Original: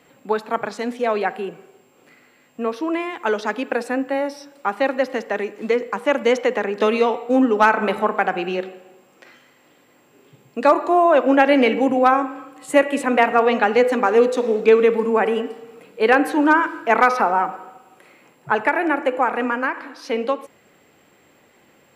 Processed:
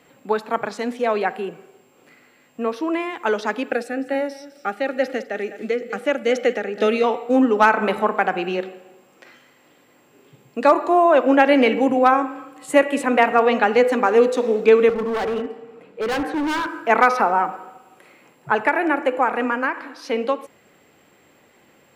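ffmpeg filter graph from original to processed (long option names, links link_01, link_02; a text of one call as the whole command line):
ffmpeg -i in.wav -filter_complex "[0:a]asettb=1/sr,asplit=3[link_01][link_02][link_03];[link_01]atrim=end=3.714[link_04];[link_02]atrim=start=3.71:end=7.04,asetpts=PTS-STARTPTS,afade=type=in:duration=0.004:curve=qsin,afade=type=out:start_time=3.326:duration=0.004:curve=qsin,asuperstop=centerf=1000:order=4:qfactor=2.6,aecho=1:1:204:0.158,atrim=end_sample=146853,tremolo=f=2.2:d=0.36[link_05];[link_03]atrim=start=7.036[link_06];[link_04][link_05]acrossfade=duration=0.004:curve1=hsin:curve2=qsin[link_07];[link_07][link_06]acrossfade=duration=0.004:curve1=qsin:curve2=hsin,asettb=1/sr,asplit=3[link_08][link_09][link_10];[link_08]atrim=end=14.894[link_11];[link_09]atrim=start=14.89:end=16.67,asetpts=PTS-STARTPTS,afade=type=in:duration=0.004:curve=qsin,afade=type=out:start_time=1.776:duration=0.004:curve=qsin,lowpass=frequency=1900:poles=1,asoftclip=type=hard:threshold=-20.5dB[link_12];[link_10]atrim=start=16.666[link_13];[link_11][link_12]acrossfade=duration=0.004:curve1=hsin:curve2=qsin[link_14];[link_14][link_13]acrossfade=duration=0.004:curve1=qsin:curve2=hsin" out.wav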